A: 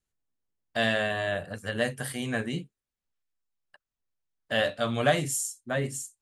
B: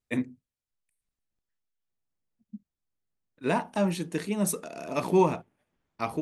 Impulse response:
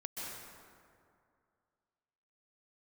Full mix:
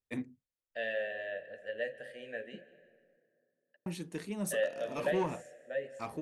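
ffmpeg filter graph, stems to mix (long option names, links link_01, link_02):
-filter_complex "[0:a]asplit=3[link_01][link_02][link_03];[link_01]bandpass=frequency=530:width_type=q:width=8,volume=0dB[link_04];[link_02]bandpass=frequency=1840:width_type=q:width=8,volume=-6dB[link_05];[link_03]bandpass=frequency=2480:width_type=q:width=8,volume=-9dB[link_06];[link_04][link_05][link_06]amix=inputs=3:normalize=0,volume=-2dB,asplit=2[link_07][link_08];[link_08]volume=-12.5dB[link_09];[1:a]asoftclip=type=tanh:threshold=-16.5dB,volume=-8.5dB,asplit=3[link_10][link_11][link_12];[link_10]atrim=end=3.17,asetpts=PTS-STARTPTS,afade=type=out:start_time=3.166:duration=0.004:curve=hsin[link_13];[link_11]atrim=start=3.17:end=3.86,asetpts=PTS-STARTPTS,volume=0[link_14];[link_12]atrim=start=3.86,asetpts=PTS-STARTPTS,afade=type=in:duration=0.004:curve=hsin[link_15];[link_13][link_14][link_15]concat=n=3:v=0:a=1[link_16];[2:a]atrim=start_sample=2205[link_17];[link_09][link_17]afir=irnorm=-1:irlink=0[link_18];[link_07][link_16][link_18]amix=inputs=3:normalize=0"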